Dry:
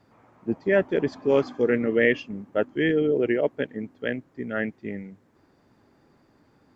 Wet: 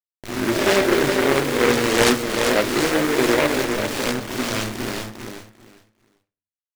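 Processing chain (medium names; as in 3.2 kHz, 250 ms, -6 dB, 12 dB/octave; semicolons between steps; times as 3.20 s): reverse spectral sustain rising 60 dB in 1.02 s; bit crusher 5-bit; feedback delay 398 ms, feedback 20%, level -6 dB; reverberation RT60 0.35 s, pre-delay 3 ms, DRR 4.5 dB; delay time shaken by noise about 1.3 kHz, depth 0.19 ms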